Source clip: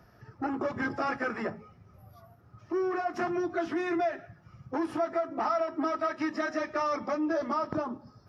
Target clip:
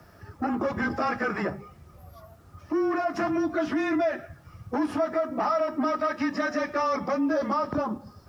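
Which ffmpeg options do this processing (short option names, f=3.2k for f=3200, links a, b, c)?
-filter_complex "[0:a]highpass=73,asplit=2[a][b];[b]alimiter=level_in=4dB:limit=-24dB:level=0:latency=1,volume=-4dB,volume=0.5dB[c];[a][c]amix=inputs=2:normalize=0,acrusher=bits=10:mix=0:aa=0.000001,afreqshift=-24"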